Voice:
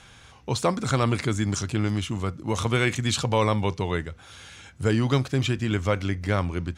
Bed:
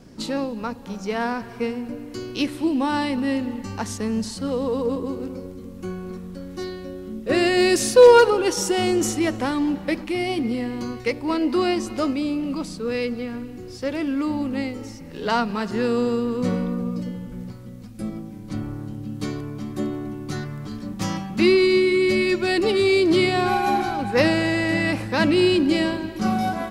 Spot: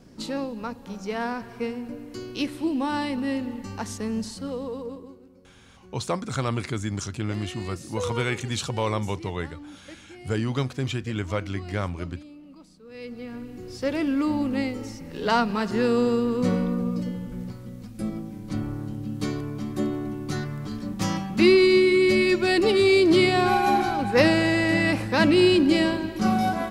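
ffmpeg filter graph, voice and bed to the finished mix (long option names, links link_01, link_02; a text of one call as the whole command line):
ffmpeg -i stem1.wav -i stem2.wav -filter_complex "[0:a]adelay=5450,volume=-4dB[link_01];[1:a]volume=17dB,afade=type=out:start_time=4.2:duration=1:silence=0.141254,afade=type=in:start_time=12.89:duration=0.96:silence=0.0891251[link_02];[link_01][link_02]amix=inputs=2:normalize=0" out.wav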